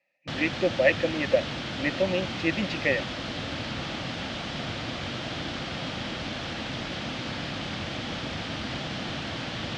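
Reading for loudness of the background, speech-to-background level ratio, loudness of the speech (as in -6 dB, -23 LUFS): -32.5 LUFS, 5.5 dB, -27.0 LUFS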